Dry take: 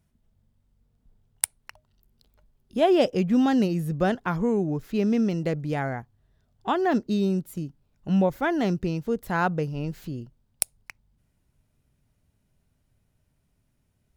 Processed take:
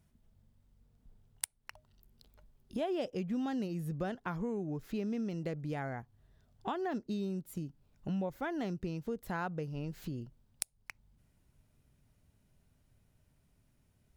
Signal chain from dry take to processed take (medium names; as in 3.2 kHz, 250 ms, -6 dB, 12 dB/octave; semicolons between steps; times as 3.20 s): compression 3:1, threshold -38 dBFS, peak gain reduction 16.5 dB